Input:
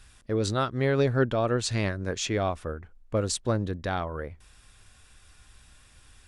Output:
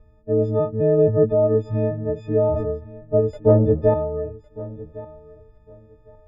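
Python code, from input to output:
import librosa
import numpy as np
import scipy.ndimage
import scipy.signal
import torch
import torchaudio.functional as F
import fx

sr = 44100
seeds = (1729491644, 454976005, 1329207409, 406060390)

y = fx.freq_snap(x, sr, grid_st=6)
y = fx.low_shelf(y, sr, hz=230.0, db=7.5)
y = fx.transient(y, sr, attack_db=-3, sustain_db=1, at=(0.73, 1.69))
y = fx.leveller(y, sr, passes=2, at=(3.33, 3.94))
y = fx.lowpass_res(y, sr, hz=530.0, q=5.3)
y = fx.echo_feedback(y, sr, ms=1108, feedback_pct=18, wet_db=-18.0)
y = fx.sustainer(y, sr, db_per_s=38.0, at=(2.31, 2.71))
y = y * 10.0 ** (-1.0 / 20.0)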